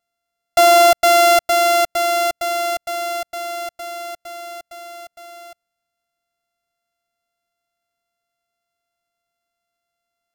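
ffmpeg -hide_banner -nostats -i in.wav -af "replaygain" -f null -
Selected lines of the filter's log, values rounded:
track_gain = -3.6 dB
track_peak = 0.276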